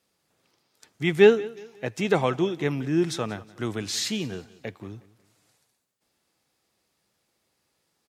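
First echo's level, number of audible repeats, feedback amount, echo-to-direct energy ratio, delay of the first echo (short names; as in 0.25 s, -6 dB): -20.5 dB, 2, 37%, -20.0 dB, 0.182 s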